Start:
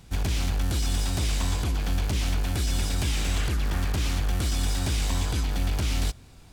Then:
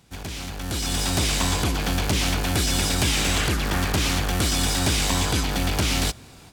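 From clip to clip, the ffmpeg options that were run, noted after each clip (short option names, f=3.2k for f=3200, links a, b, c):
-af "highpass=f=170:p=1,dynaudnorm=f=540:g=3:m=12dB,volume=-2.5dB"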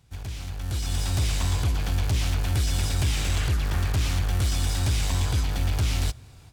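-af "lowshelf=f=150:t=q:w=1.5:g=9,asoftclip=type=hard:threshold=-10dB,volume=-8dB"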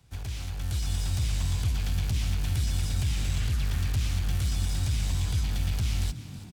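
-filter_complex "[0:a]acrossover=split=160|560|1900[a][b][c][d];[a]acompressor=threshold=-24dB:ratio=4[e];[b]acompressor=threshold=-50dB:ratio=4[f];[c]acompressor=threshold=-52dB:ratio=4[g];[d]acompressor=threshold=-39dB:ratio=4[h];[e][f][g][h]amix=inputs=4:normalize=0,asplit=6[i][j][k][l][m][n];[j]adelay=324,afreqshift=49,volume=-15dB[o];[k]adelay=648,afreqshift=98,volume=-20.7dB[p];[l]adelay=972,afreqshift=147,volume=-26.4dB[q];[m]adelay=1296,afreqshift=196,volume=-32dB[r];[n]adelay=1620,afreqshift=245,volume=-37.7dB[s];[i][o][p][q][r][s]amix=inputs=6:normalize=0"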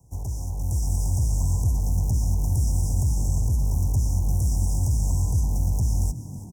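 -af "asuperstop=centerf=2400:order=20:qfactor=0.53,volume=5dB"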